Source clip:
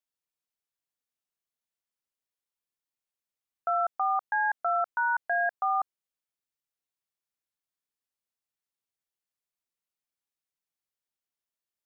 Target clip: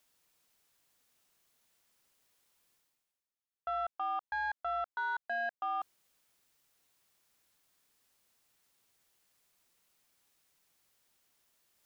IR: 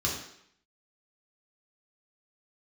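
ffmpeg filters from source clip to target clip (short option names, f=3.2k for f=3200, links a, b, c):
-af "asoftclip=type=tanh:threshold=-21dB,areverse,acompressor=mode=upward:threshold=-47dB:ratio=2.5,areverse,volume=-6.5dB"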